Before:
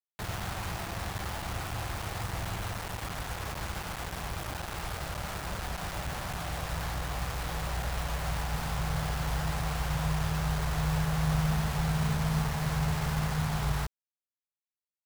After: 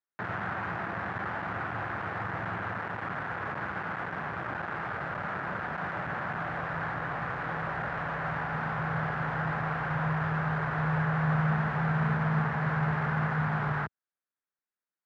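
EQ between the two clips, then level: Bessel high-pass 180 Hz, order 4; resonant low-pass 1.6 kHz, resonance Q 2.7; bass shelf 350 Hz +6.5 dB; 0.0 dB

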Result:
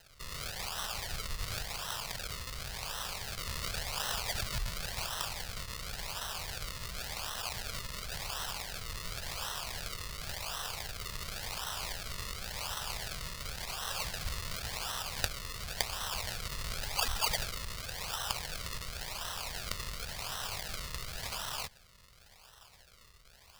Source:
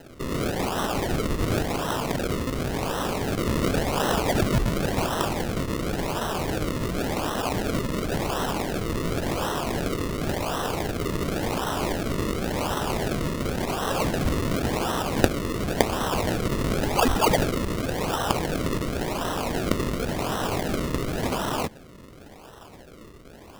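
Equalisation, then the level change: amplifier tone stack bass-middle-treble 10-0-10; peaking EQ 4.6 kHz +5.5 dB 0.39 oct; -4.0 dB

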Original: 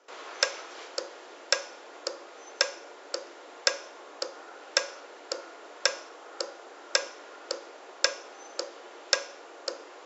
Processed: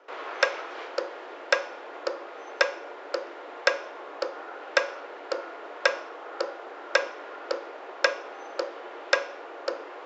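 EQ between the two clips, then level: high-pass 260 Hz; low-pass 2.5 kHz 12 dB/octave; +7.0 dB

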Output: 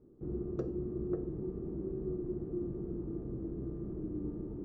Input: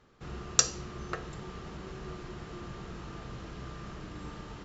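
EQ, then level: resonant low-pass 340 Hz, resonance Q 3.5; 0.0 dB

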